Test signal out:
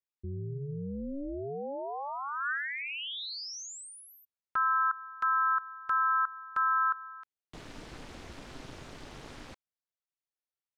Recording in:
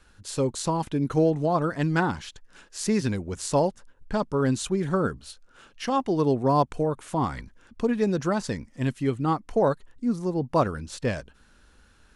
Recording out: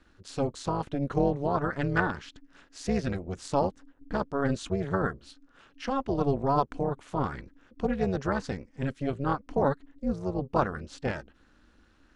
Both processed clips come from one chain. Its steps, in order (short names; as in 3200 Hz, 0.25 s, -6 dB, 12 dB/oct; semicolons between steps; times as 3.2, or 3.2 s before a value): dynamic EQ 1500 Hz, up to +6 dB, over -43 dBFS, Q 3.9; AM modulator 280 Hz, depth 80%; air absorption 85 m